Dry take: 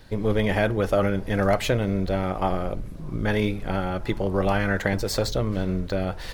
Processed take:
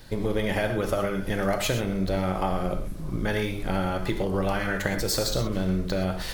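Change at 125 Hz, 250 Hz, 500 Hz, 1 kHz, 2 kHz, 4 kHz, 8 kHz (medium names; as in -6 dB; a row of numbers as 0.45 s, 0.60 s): -3.0 dB, -2.0 dB, -3.0 dB, -2.0 dB, -2.0 dB, +1.5 dB, +4.5 dB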